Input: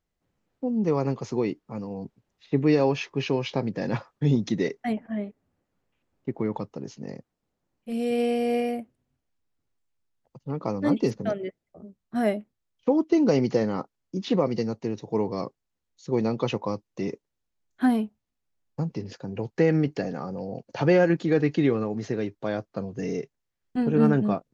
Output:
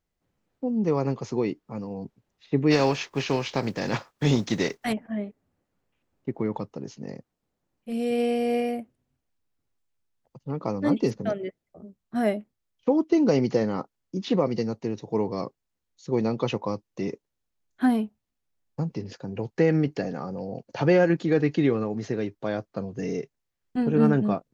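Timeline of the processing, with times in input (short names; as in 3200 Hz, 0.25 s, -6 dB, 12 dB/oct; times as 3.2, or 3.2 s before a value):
2.7–4.92 spectral contrast lowered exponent 0.67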